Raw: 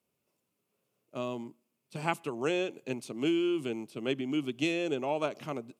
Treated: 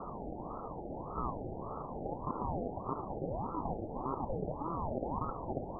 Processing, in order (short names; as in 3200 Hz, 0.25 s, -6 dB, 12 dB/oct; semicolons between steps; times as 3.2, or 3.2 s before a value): steep high-pass 190 Hz 36 dB/oct; notches 50/100/150/200/250/300/350 Hz; level quantiser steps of 12 dB; limiter -34 dBFS, peak gain reduction 10.5 dB; in parallel at -2 dB: negative-ratio compressor -44 dBFS, ratio -0.5; on the sum: power-law curve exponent 2; requantised 6-bit, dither triangular; rippled Chebyshev low-pass 670 Hz, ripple 3 dB; ring modulator with a swept carrier 400 Hz, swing 70%, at 1.7 Hz; gain +13.5 dB